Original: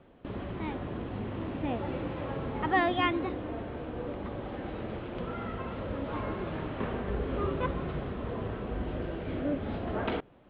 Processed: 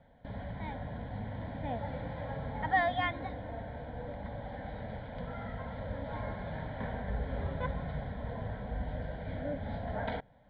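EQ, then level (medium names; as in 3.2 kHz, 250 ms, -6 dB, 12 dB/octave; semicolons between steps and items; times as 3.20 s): distance through air 59 m; static phaser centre 1.8 kHz, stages 8; 0.0 dB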